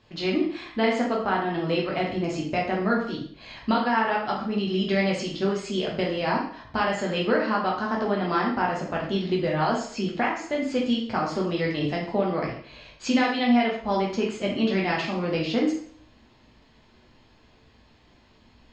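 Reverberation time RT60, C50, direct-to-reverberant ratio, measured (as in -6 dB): 0.55 s, 4.5 dB, -3.0 dB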